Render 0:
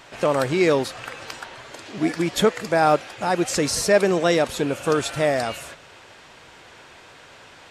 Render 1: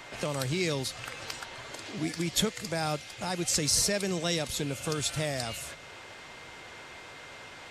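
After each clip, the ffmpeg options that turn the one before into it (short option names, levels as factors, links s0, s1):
-filter_complex "[0:a]acrossover=split=160|3000[s0][s1][s2];[s1]acompressor=threshold=0.00631:ratio=2[s3];[s0][s3][s2]amix=inputs=3:normalize=0,aeval=exprs='val(0)+0.00251*sin(2*PI*2100*n/s)':c=same"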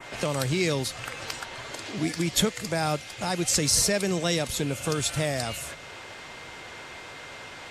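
-af "adynamicequalizer=threshold=0.00562:dfrequency=4400:dqfactor=1.1:tfrequency=4400:tqfactor=1.1:attack=5:release=100:ratio=0.375:range=1.5:mode=cutabove:tftype=bell,volume=1.68"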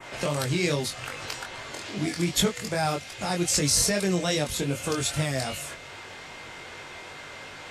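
-af "flanger=delay=20:depth=3:speed=2.5,volume=1.41"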